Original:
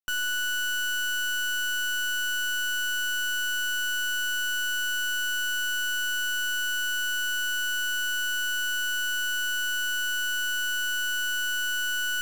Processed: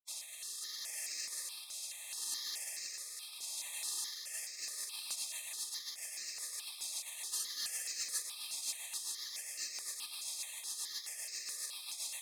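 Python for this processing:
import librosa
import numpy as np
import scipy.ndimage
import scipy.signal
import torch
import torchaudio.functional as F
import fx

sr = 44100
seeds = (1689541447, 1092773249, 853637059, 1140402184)

y = fx.low_shelf(x, sr, hz=220.0, db=-9.0, at=(5.43, 6.33))
y = fx.whisperise(y, sr, seeds[0])
y = fx.comb(y, sr, ms=4.0, depth=0.8, at=(7.32, 8.22))
y = fx.rotary_switch(y, sr, hz=0.7, then_hz=7.5, switch_at_s=3.98)
y = fx.spec_gate(y, sr, threshold_db=-30, keep='weak')
y = fx.weighting(y, sr, curve='ITU-R 468')
y = y + 10.0 ** (-12.0 / 20.0) * np.pad(y, (int(1099 * sr / 1000.0), 0))[:len(y)]
y = fx.phaser_held(y, sr, hz=4.7, low_hz=450.0, high_hz=3400.0)
y = y * 10.0 ** (1.5 / 20.0)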